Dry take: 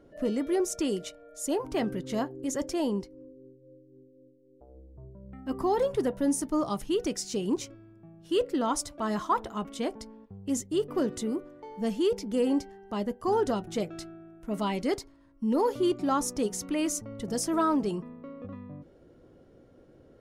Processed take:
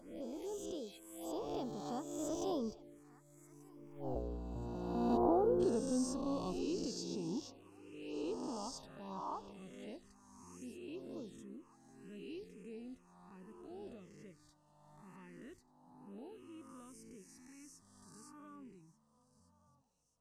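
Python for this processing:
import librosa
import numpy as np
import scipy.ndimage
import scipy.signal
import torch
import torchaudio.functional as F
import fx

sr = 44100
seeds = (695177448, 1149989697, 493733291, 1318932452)

p1 = fx.spec_swells(x, sr, rise_s=1.35)
p2 = fx.doppler_pass(p1, sr, speed_mps=35, closest_m=2.9, pass_at_s=4.09)
p3 = fx.spec_box(p2, sr, start_s=5.17, length_s=0.43, low_hz=1600.0, high_hz=9700.0, gain_db=-27)
p4 = p3 + fx.echo_thinned(p3, sr, ms=1188, feedback_pct=56, hz=420.0, wet_db=-20.0, dry=0)
p5 = fx.env_phaser(p4, sr, low_hz=340.0, high_hz=2100.0, full_db=-56.0)
y = F.gain(torch.from_numpy(p5), 16.0).numpy()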